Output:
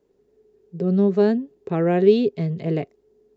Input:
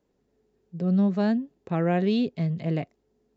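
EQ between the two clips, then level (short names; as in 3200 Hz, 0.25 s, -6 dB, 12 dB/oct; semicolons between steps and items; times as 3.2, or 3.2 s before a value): bell 410 Hz +14 dB 0.38 oct; +1.5 dB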